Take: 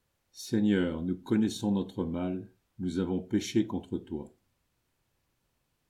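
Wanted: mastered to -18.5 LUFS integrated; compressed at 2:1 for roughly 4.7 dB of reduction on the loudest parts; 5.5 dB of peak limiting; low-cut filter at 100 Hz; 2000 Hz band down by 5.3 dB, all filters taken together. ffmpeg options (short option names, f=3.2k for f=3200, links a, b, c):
-af "highpass=100,equalizer=f=2k:t=o:g=-7.5,acompressor=threshold=-30dB:ratio=2,volume=18dB,alimiter=limit=-6.5dB:level=0:latency=1"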